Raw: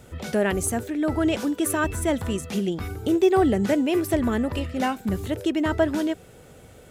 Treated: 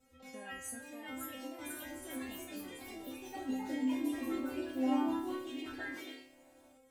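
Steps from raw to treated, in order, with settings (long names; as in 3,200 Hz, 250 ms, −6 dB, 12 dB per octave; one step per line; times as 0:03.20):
stiff-string resonator 260 Hz, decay 0.81 s, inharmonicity 0.002
delay with pitch and tempo change per echo 623 ms, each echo +2 semitones, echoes 3
level +1 dB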